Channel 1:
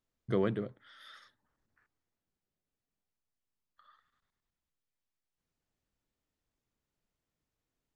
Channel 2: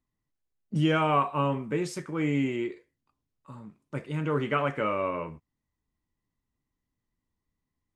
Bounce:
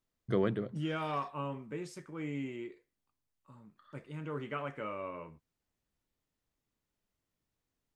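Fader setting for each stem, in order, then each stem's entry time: 0.0, −11.5 decibels; 0.00, 0.00 seconds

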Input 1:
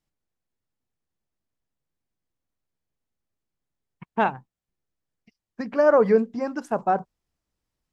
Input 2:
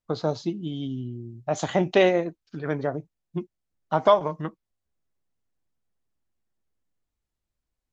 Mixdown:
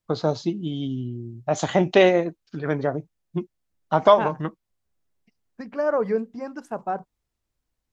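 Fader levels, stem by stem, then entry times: −5.5, +3.0 decibels; 0.00, 0.00 seconds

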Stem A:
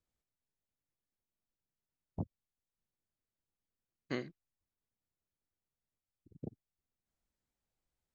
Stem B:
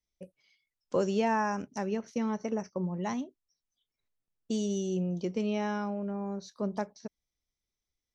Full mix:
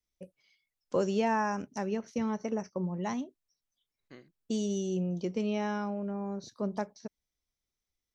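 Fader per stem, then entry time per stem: −14.0, −0.5 decibels; 0.00, 0.00 seconds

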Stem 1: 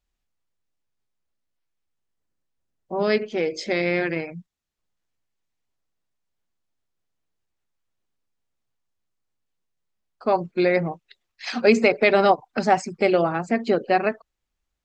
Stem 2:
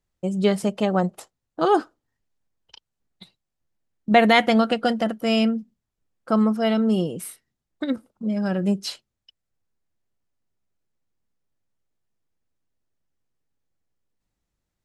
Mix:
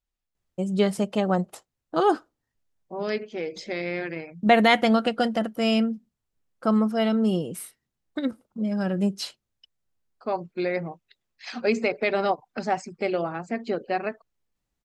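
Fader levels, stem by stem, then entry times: −7.0, −2.0 decibels; 0.00, 0.35 seconds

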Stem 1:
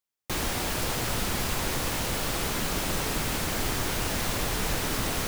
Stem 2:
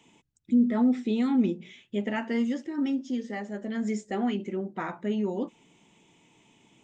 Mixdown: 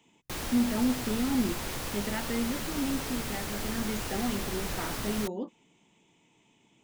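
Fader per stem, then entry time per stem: −6.5, −4.5 decibels; 0.00, 0.00 seconds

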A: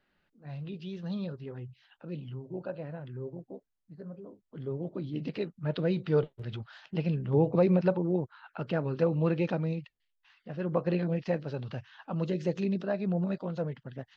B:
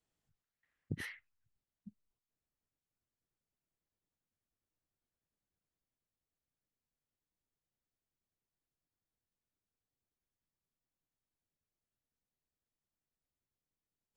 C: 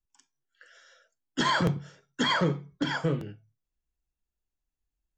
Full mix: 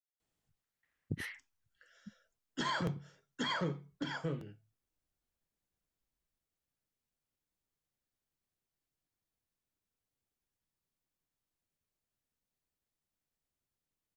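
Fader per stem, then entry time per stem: muted, +1.5 dB, −10.0 dB; muted, 0.20 s, 1.20 s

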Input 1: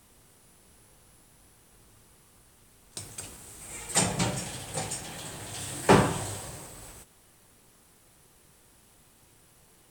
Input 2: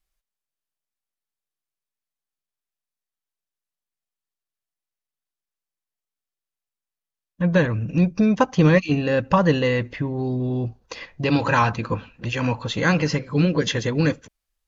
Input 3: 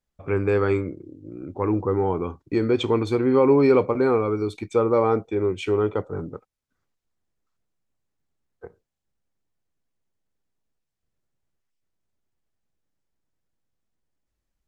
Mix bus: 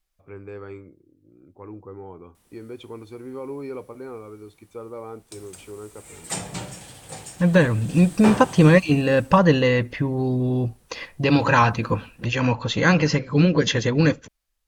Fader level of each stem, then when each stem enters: −4.5, +2.0, −16.5 decibels; 2.35, 0.00, 0.00 seconds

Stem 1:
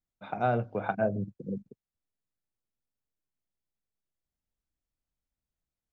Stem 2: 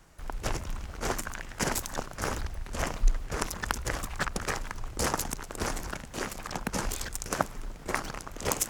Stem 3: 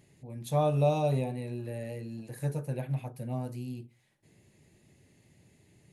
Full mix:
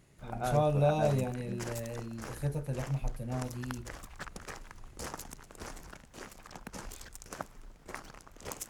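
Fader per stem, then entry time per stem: −7.0, −12.5, −1.5 decibels; 0.00, 0.00, 0.00 seconds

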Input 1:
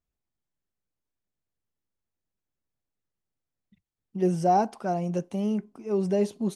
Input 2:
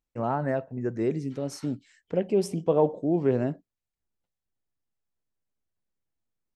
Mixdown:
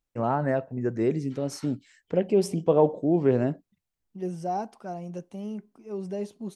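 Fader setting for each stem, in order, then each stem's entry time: −8.0, +2.0 decibels; 0.00, 0.00 seconds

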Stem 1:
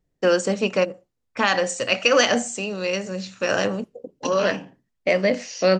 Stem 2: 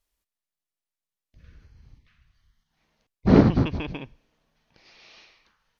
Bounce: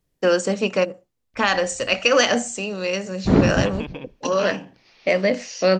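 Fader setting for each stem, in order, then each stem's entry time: +0.5, −0.5 decibels; 0.00, 0.00 seconds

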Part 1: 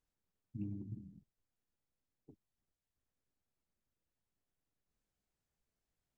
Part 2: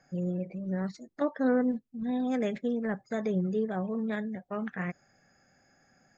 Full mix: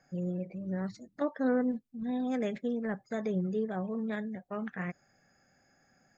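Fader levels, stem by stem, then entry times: −15.0, −2.5 decibels; 0.00, 0.00 seconds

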